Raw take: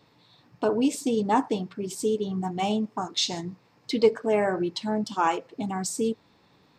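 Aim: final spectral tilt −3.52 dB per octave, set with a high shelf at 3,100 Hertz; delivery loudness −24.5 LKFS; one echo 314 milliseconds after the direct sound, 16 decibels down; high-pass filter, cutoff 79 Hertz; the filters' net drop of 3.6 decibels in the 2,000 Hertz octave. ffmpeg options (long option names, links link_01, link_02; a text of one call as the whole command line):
ffmpeg -i in.wav -af "highpass=79,equalizer=frequency=2000:width_type=o:gain=-8,highshelf=frequency=3100:gain=8.5,aecho=1:1:314:0.158,volume=1.5dB" out.wav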